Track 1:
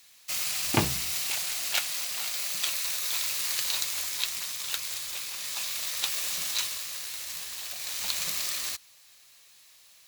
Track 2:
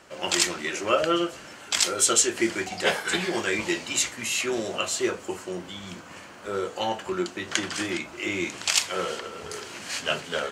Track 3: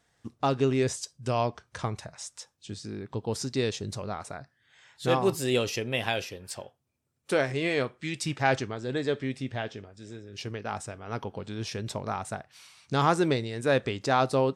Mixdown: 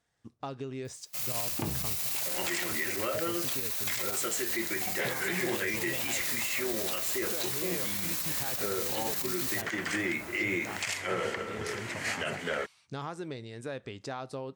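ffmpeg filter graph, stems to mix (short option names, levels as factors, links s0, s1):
-filter_complex "[0:a]dynaudnorm=f=320:g=3:m=5.01,adelay=850,volume=0.841[s0];[1:a]equalizer=f=2000:w=2.3:g=14,adelay=2150,volume=1.26[s1];[2:a]acompressor=threshold=0.0501:ratio=6,volume=0.376[s2];[s0][s1]amix=inputs=2:normalize=0,equalizer=f=3500:w=0.31:g=-9.5,acompressor=threshold=0.0501:ratio=5,volume=1[s3];[s2][s3]amix=inputs=2:normalize=0,alimiter=limit=0.0891:level=0:latency=1:release=37"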